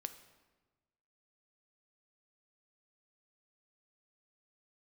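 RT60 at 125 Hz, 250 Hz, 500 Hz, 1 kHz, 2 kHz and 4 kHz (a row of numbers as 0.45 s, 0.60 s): 1.6 s, 1.4 s, 1.3 s, 1.2 s, 1.1 s, 0.90 s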